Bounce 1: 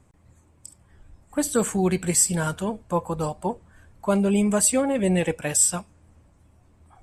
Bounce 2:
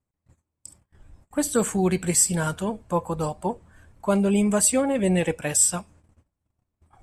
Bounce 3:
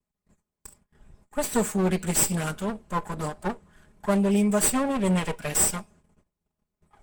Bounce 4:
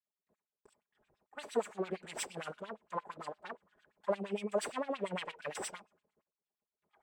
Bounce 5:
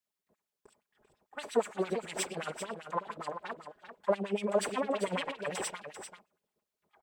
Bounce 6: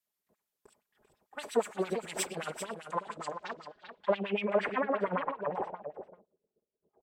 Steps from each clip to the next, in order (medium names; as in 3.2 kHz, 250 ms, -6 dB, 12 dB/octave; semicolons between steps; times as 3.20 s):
gate -52 dBFS, range -25 dB
comb filter that takes the minimum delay 4.8 ms; trim -1 dB
LFO band-pass sine 8.7 Hz 420–3900 Hz; trim -3 dB
delay 392 ms -9.5 dB; trim +4.5 dB
low-pass sweep 14 kHz -> 450 Hz, 2.55–6.33 s